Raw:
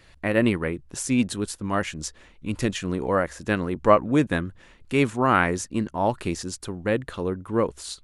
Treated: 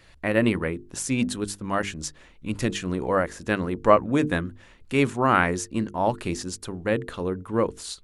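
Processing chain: notches 50/100/150/200/250/300/350/400/450 Hz

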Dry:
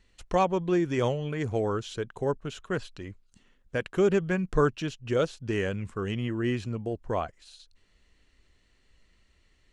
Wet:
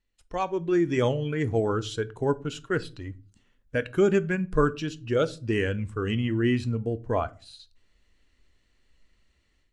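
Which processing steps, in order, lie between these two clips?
spectral noise reduction 8 dB; AGC gain up to 14 dB; on a send: reverb RT60 0.40 s, pre-delay 3 ms, DRR 14 dB; on the sum: gain -9 dB

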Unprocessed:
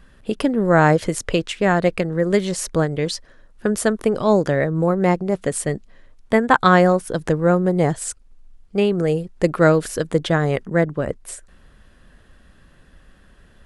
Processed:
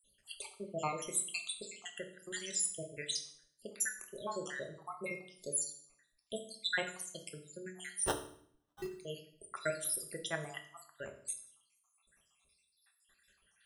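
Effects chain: random spectral dropouts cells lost 80%; pre-emphasis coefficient 0.97; spectral gate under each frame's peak -30 dB strong; 8.06–8.88 sample-rate reducer 2300 Hz, jitter 0%; on a send: reverb RT60 0.60 s, pre-delay 3 ms, DRR 3 dB

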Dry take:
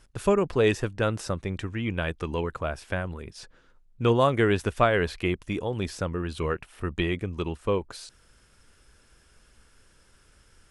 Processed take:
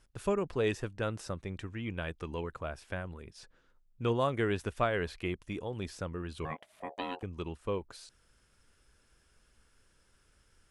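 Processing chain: 6.45–7.23 ring modulator 630 Hz; gain -8.5 dB

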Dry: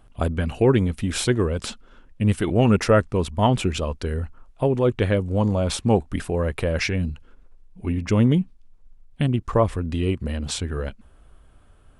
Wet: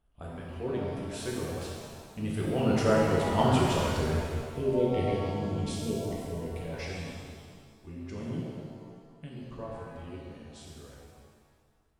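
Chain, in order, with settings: Doppler pass-by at 3.85, 6 m/s, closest 5.3 m; spectral delete 4.55–6.65, 500–1800 Hz; shimmer reverb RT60 1.8 s, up +7 st, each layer -8 dB, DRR -4.5 dB; gain -9 dB

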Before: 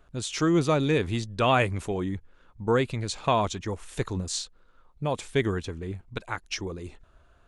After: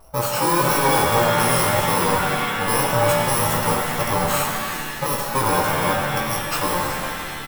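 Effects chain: FFT order left unsorted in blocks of 64 samples; vibrato 1.8 Hz 59 cents; in parallel at -2 dB: negative-ratio compressor -30 dBFS; on the sum: soft clip -21.5 dBFS, distortion -11 dB; band shelf 790 Hz +15 dB; doubler 17 ms -5.5 dB; split-band echo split 980 Hz, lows 85 ms, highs 0.381 s, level -13 dB; shimmer reverb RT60 2.1 s, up +7 st, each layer -2 dB, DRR 2.5 dB

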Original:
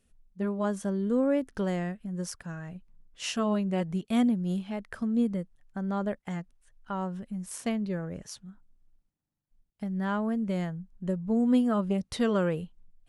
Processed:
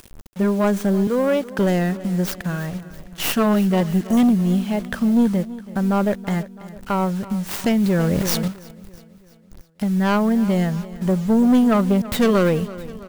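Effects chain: tracing distortion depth 0.38 ms; 1.07–1.59 weighting filter A; sample leveller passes 2; 3.89–4.15 spectral repair 1400–5700 Hz before; in parallel at -2.5 dB: upward compressor, threshold -24 dBFS; on the sum: bit-crush 7-bit; on a send: feedback echo 0.33 s, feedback 56%, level -17 dB; 7.64–8.48 on the sum: fast leveller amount 70%

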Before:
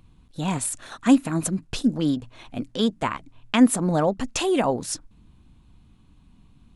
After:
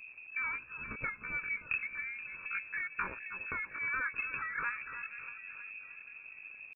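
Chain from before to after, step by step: bell 62 Hz +6.5 dB 1.1 oct; compressor 10:1, threshold -28 dBFS, peak gain reduction 18 dB; fixed phaser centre 1600 Hz, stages 8; on a send: split-band echo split 520 Hz, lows 0.471 s, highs 0.309 s, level -10.5 dB; on the sum: pitch shift +9.5 st; crackle 260/s -48 dBFS; inverted band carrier 2600 Hz

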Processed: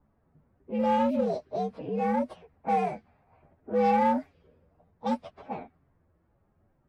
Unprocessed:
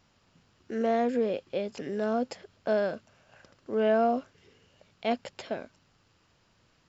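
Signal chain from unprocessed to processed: inharmonic rescaling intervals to 122%; low-pass opened by the level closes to 1000 Hz, open at -26.5 dBFS; high shelf 3500 Hz -11.5 dB; in parallel at -4.5 dB: hard clip -27 dBFS, distortion -10 dB

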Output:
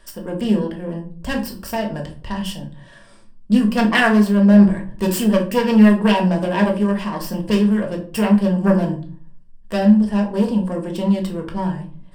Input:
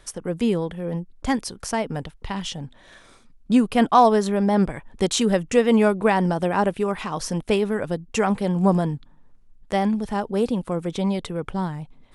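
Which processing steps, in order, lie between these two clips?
self-modulated delay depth 0.35 ms; ripple EQ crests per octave 1.3, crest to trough 9 dB; shoebox room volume 330 m³, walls furnished, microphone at 1.7 m; gain -2 dB

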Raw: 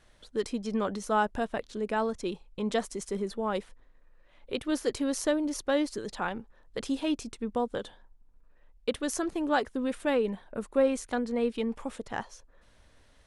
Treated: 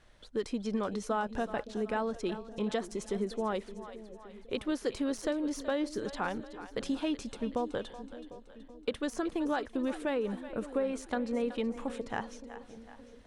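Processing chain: de-esser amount 75%; high shelf 8500 Hz -9 dB; compressor 5:1, threshold -28 dBFS, peak gain reduction 8.5 dB; split-band echo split 520 Hz, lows 0.569 s, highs 0.375 s, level -13 dB

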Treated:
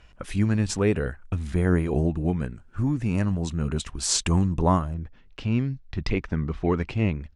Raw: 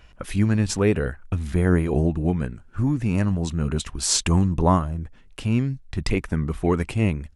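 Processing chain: LPF 10000 Hz 24 dB/oct, from 4.94 s 5500 Hz; gain -2.5 dB

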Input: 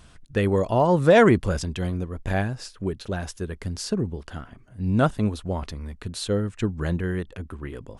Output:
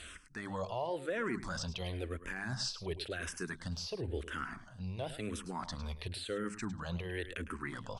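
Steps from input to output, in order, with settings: notches 50/100/150/200 Hz; de-esser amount 95%; LPF 9000 Hz 12 dB/oct; tilt shelf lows -7.5 dB, about 860 Hz; notch 6900 Hz, Q 12; reverse; compressor 6:1, threshold -38 dBFS, peak gain reduction 20.5 dB; reverse; limiter -32 dBFS, peak gain reduction 9 dB; on a send: echo 0.105 s -13 dB; on the sum: endless phaser -0.96 Hz; gain +6 dB

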